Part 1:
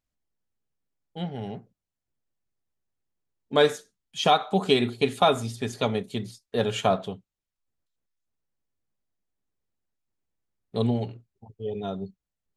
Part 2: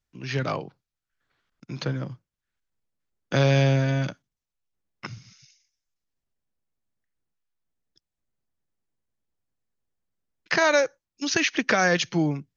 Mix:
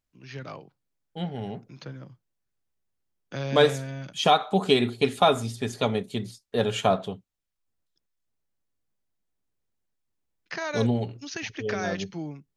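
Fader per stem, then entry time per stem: +0.5, -11.5 dB; 0.00, 0.00 s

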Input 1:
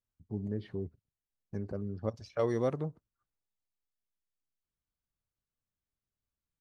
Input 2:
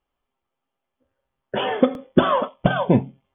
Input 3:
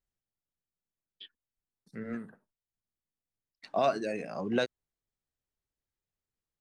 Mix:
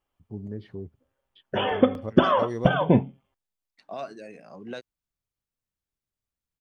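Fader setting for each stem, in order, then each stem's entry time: 0.0, -2.0, -8.5 dB; 0.00, 0.00, 0.15 s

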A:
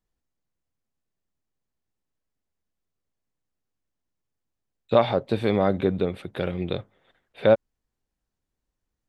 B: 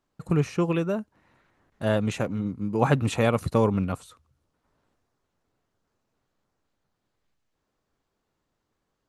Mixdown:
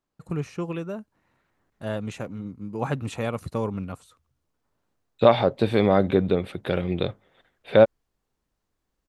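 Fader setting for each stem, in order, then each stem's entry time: +2.5, -6.0 dB; 0.30, 0.00 s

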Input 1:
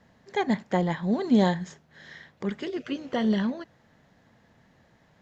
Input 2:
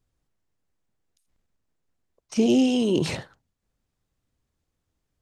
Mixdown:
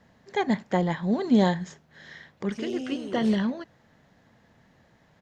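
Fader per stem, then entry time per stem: +0.5, -15.0 dB; 0.00, 0.20 s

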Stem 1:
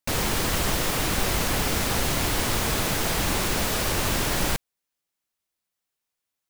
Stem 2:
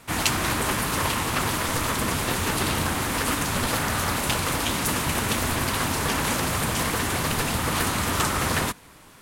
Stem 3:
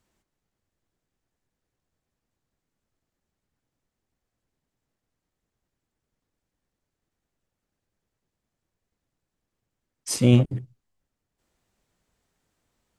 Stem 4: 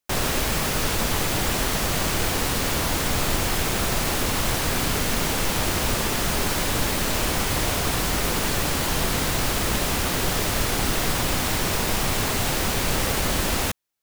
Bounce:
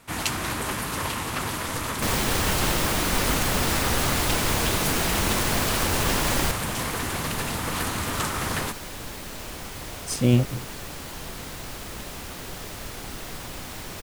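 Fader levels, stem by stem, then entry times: -0.5, -4.0, -2.0, -13.0 dB; 1.95, 0.00, 0.00, 2.25 s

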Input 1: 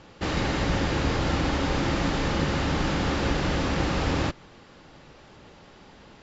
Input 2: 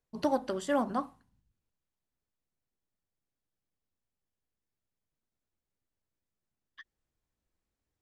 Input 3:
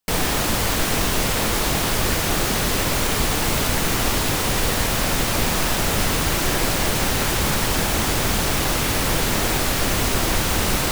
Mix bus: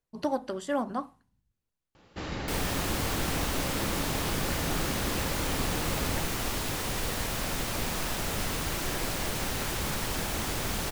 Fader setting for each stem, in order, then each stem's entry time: -9.0, -0.5, -11.0 dB; 1.95, 0.00, 2.40 s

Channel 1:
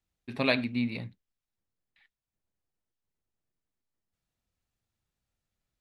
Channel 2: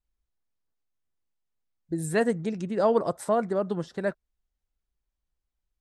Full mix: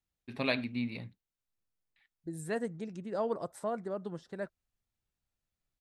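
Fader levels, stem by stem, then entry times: -5.0, -10.5 dB; 0.00, 0.35 s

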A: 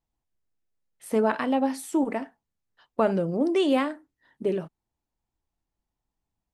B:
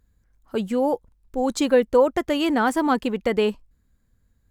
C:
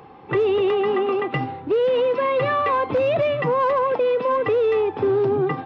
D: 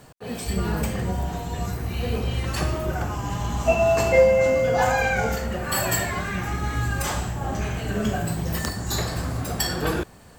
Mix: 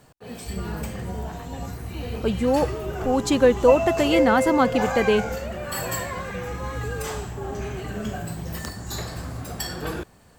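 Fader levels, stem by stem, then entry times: -17.0, +1.0, -16.0, -5.5 dB; 0.00, 1.70, 2.35, 0.00 s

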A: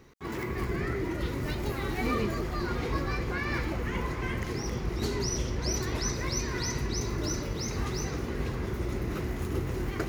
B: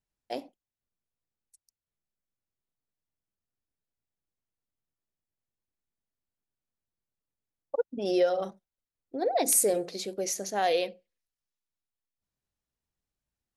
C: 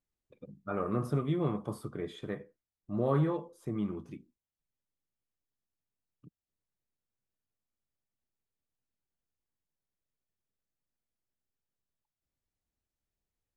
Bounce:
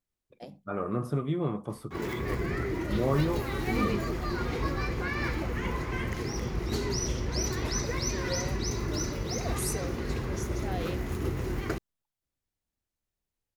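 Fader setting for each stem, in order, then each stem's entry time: 0.0, -12.0, +1.0 dB; 1.70, 0.10, 0.00 s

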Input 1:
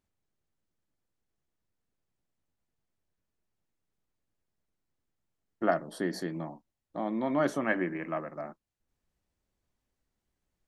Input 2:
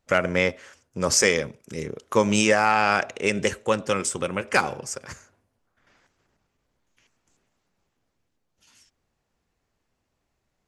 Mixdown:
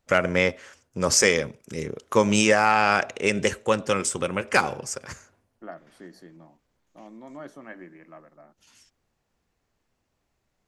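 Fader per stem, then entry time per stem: -13.0, +0.5 dB; 0.00, 0.00 s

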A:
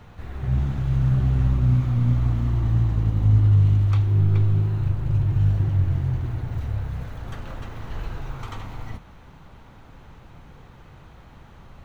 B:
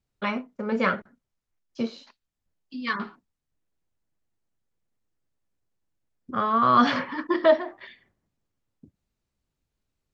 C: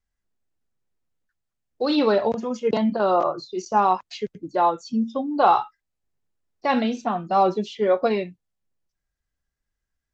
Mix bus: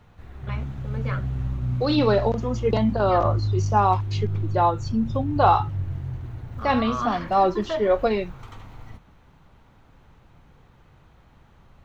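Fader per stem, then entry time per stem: -7.5, -10.0, -0.5 dB; 0.00, 0.25, 0.00 s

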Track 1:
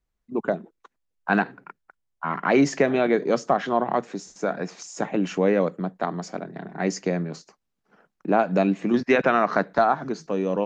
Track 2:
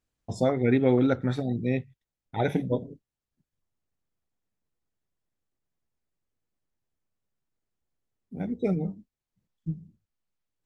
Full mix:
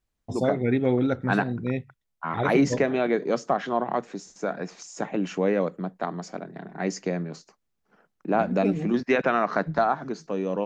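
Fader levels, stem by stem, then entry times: -3.0, -1.0 dB; 0.00, 0.00 s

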